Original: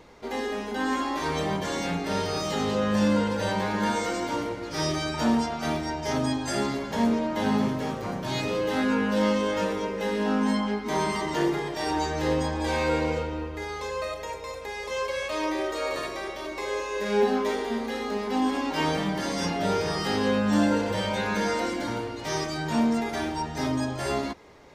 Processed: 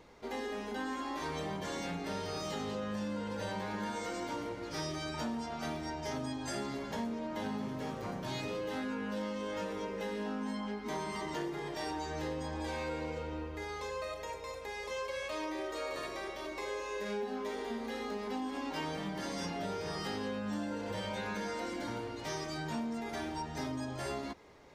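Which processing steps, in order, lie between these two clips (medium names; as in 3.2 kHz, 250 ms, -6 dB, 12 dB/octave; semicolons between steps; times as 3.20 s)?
compression, threshold -28 dBFS, peak gain reduction 10 dB; trim -6.5 dB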